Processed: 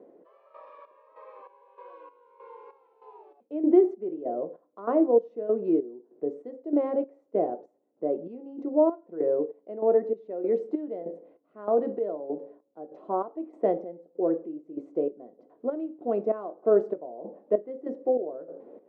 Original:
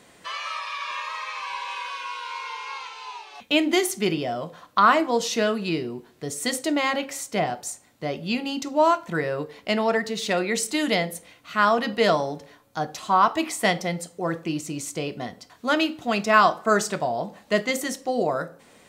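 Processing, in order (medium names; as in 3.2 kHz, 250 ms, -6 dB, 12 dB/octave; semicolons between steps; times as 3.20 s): reverse; upward compressor, threshold -38 dBFS; reverse; trance gate "xxx....x" 194 bpm -12 dB; Butterworth band-pass 410 Hz, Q 1.5; trim +5 dB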